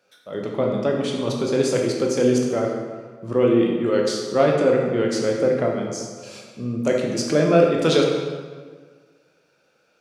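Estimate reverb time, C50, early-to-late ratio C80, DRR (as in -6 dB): 1.6 s, 2.5 dB, 4.0 dB, -0.5 dB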